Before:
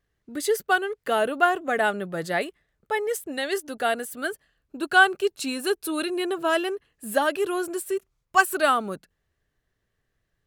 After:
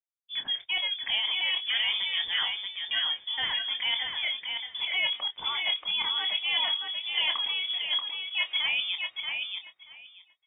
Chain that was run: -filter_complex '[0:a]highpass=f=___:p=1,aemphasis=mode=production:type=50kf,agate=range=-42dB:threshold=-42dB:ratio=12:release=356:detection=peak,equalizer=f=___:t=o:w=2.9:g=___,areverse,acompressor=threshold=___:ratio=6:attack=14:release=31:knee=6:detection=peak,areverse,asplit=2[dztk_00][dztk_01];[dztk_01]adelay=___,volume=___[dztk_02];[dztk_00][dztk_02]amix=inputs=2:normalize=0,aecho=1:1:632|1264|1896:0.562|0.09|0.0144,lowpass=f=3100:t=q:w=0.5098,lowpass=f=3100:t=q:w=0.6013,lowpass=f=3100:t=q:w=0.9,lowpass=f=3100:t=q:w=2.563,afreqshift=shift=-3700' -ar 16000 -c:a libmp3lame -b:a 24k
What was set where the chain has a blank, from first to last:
50, 890, 5.5, -30dB, 26, -9dB